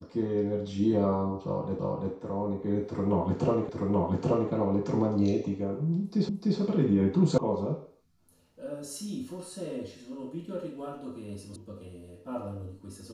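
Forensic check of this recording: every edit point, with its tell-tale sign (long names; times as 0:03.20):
0:01.79: the same again, the last 0.34 s
0:03.69: the same again, the last 0.83 s
0:06.29: the same again, the last 0.3 s
0:07.38: cut off before it has died away
0:11.56: cut off before it has died away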